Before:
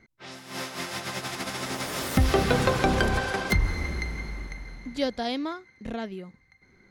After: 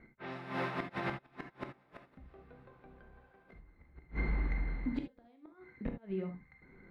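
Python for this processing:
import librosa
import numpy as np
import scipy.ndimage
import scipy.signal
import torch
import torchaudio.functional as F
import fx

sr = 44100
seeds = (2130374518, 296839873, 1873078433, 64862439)

y = fx.graphic_eq_31(x, sr, hz=(100, 3150, 5000), db=(-3, -5, -5))
y = fx.gate_flip(y, sr, shuts_db=-22.0, range_db=-36)
y = fx.air_absorb(y, sr, metres=440.0)
y = fx.rev_gated(y, sr, seeds[0], gate_ms=100, shape='flat', drr_db=4.5)
y = F.gain(torch.from_numpy(y), 1.5).numpy()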